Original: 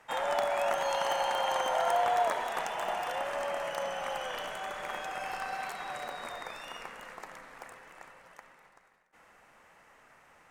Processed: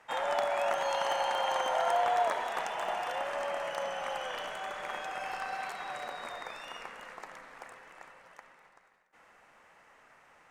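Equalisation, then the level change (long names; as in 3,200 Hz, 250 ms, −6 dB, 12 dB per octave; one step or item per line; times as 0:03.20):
low-shelf EQ 240 Hz −5 dB
high-shelf EQ 11,000 Hz −10.5 dB
0.0 dB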